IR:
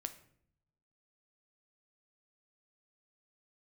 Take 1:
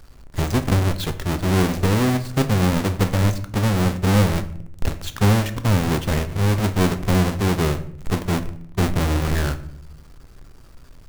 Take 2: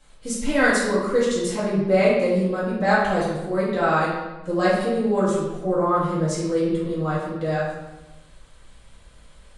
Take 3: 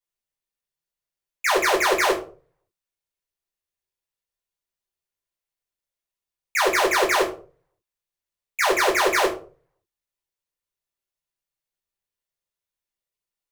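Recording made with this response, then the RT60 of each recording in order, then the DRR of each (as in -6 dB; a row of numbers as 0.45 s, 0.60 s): 1; 0.65 s, 1.1 s, 0.40 s; 8.5 dB, -9.5 dB, -5.0 dB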